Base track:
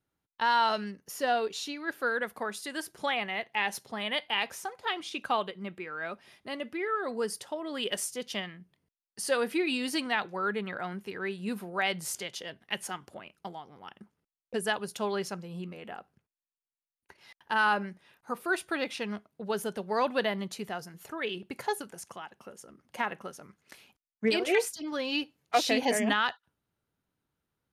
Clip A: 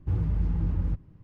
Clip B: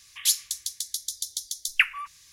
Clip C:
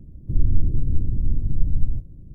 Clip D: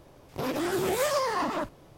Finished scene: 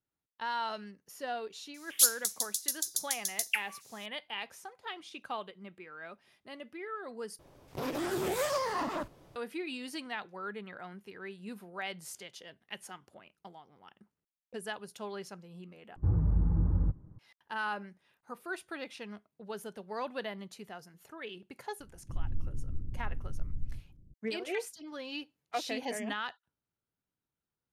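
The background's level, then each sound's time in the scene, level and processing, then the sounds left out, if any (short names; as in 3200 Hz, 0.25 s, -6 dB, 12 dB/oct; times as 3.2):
base track -9.5 dB
1.74 add B -1.5 dB + differentiator
7.39 replace with D -5 dB
15.96 replace with A -1 dB + LPF 1400 Hz 24 dB/oct
21.8 add C -16 dB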